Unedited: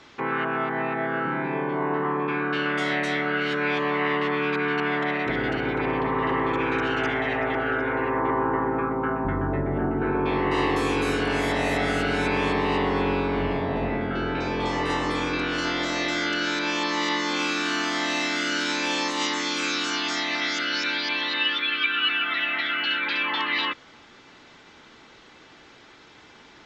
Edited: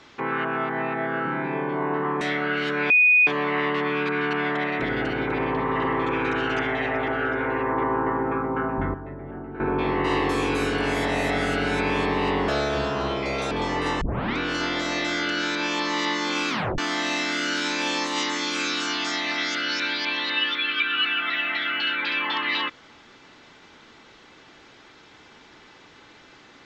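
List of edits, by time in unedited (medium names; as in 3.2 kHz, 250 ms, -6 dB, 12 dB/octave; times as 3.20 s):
2.21–3.05 s: delete
3.74 s: add tone 2.48 kHz -13 dBFS 0.37 s
9.41–10.07 s: gain -11 dB
12.95–14.55 s: speed 155%
15.05 s: tape start 0.37 s
17.53 s: tape stop 0.29 s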